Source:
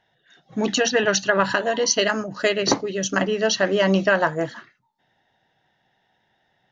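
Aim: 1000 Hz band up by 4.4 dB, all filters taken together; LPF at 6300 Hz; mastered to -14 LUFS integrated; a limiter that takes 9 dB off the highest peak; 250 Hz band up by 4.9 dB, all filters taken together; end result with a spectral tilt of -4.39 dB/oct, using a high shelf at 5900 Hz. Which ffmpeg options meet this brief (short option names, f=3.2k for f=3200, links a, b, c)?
-af "lowpass=6.3k,equalizer=f=250:t=o:g=6.5,equalizer=f=1k:t=o:g=5.5,highshelf=f=5.9k:g=-5,volume=7dB,alimiter=limit=-2.5dB:level=0:latency=1"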